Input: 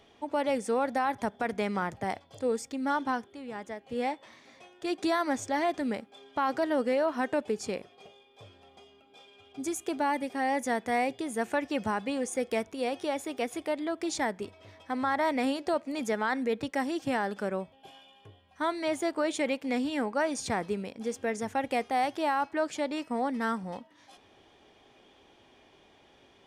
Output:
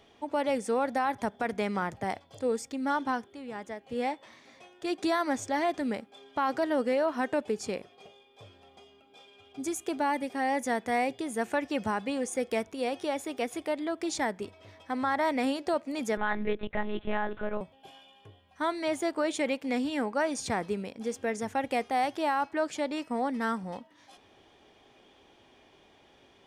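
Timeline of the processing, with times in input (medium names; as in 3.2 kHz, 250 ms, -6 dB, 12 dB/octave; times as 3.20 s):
16.17–17.61 s: monotone LPC vocoder at 8 kHz 210 Hz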